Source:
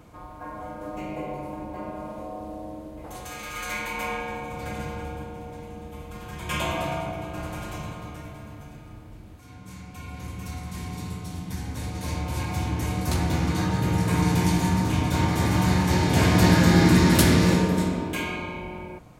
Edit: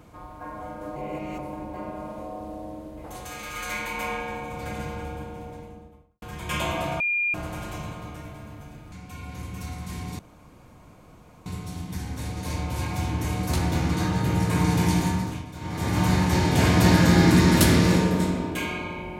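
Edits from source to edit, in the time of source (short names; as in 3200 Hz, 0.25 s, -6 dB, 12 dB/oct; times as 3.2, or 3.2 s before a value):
0.96–1.39 reverse
5.4–6.22 studio fade out
7–7.34 bleep 2410 Hz -21.5 dBFS
8.92–9.77 cut
11.04 insert room tone 1.27 s
14.59–15.62 dip -15 dB, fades 0.44 s linear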